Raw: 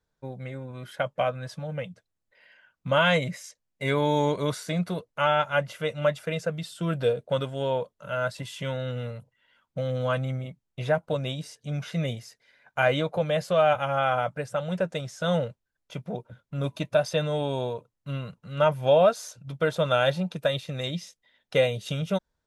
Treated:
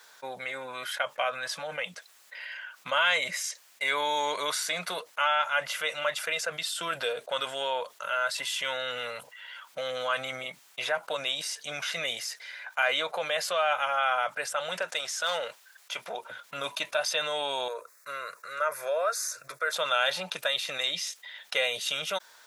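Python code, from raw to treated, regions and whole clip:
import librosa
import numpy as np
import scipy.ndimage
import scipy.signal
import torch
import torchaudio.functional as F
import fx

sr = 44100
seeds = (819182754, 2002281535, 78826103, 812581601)

y = fx.chain(x, sr, fx.low_shelf(hz=220.0, db=-11.5),
    fx.overload_stage(gain_db=21.5), at=(14.82, 16.23))
y = fx.chain(y, sr, fx.highpass(hz=310.0, slope=6),
    fx.fixed_phaser(hz=830.0, stages=6), at=(17.68, 19.73))
y = scipy.signal.sosfilt(scipy.signal.butter(2, 1100.0, 'highpass', fs=sr, output='sos'), y)
y = fx.env_flatten(y, sr, amount_pct=50)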